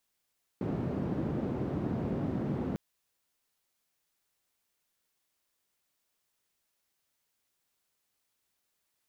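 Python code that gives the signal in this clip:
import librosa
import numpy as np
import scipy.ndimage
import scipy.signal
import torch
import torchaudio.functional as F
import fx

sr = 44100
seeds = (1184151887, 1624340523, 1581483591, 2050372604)

y = fx.band_noise(sr, seeds[0], length_s=2.15, low_hz=120.0, high_hz=240.0, level_db=-33.0)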